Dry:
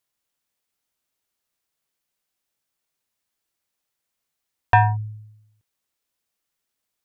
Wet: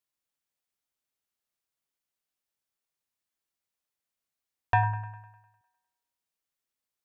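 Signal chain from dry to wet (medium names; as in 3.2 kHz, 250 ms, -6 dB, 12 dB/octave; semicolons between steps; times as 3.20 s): feedback echo behind a band-pass 101 ms, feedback 55%, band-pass 1.2 kHz, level -12 dB; endings held to a fixed fall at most 110 dB/s; trim -8.5 dB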